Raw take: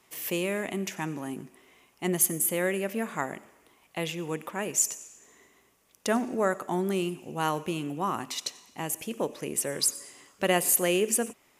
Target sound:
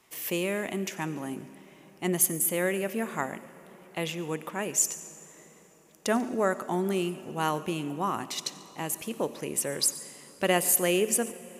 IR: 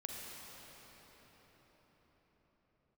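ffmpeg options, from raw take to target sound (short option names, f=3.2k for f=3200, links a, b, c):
-filter_complex "[0:a]asplit=2[a][b];[1:a]atrim=start_sample=2205,adelay=141[c];[b][c]afir=irnorm=-1:irlink=0,volume=-16.5dB[d];[a][d]amix=inputs=2:normalize=0"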